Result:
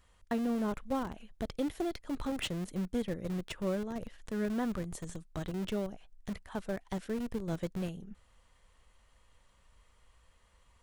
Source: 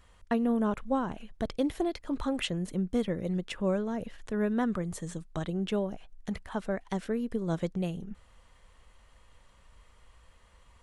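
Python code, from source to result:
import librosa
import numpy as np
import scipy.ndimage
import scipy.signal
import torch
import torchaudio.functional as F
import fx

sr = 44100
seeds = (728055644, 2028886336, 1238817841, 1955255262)

p1 = fx.high_shelf(x, sr, hz=4500.0, db=4.0)
p2 = fx.schmitt(p1, sr, flips_db=-30.0)
p3 = p1 + (p2 * 10.0 ** (-4.0 / 20.0))
y = p3 * 10.0 ** (-6.5 / 20.0)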